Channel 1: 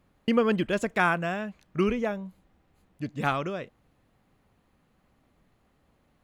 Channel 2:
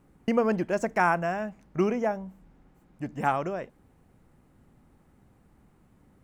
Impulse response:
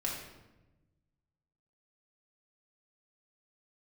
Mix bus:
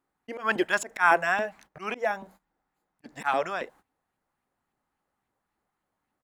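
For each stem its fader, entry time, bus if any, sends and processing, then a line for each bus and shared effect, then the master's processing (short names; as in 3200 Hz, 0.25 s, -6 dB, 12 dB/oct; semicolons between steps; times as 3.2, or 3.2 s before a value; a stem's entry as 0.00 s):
0.0 dB, 0.00 s, no send, LFO high-pass saw up 3.6 Hz 220–2700 Hz
-3.5 dB, 0.3 ms, no send, band shelf 1200 Hz +9.5 dB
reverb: off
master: auto swell 0.158 s; tone controls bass -8 dB, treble +6 dB; gate -52 dBFS, range -18 dB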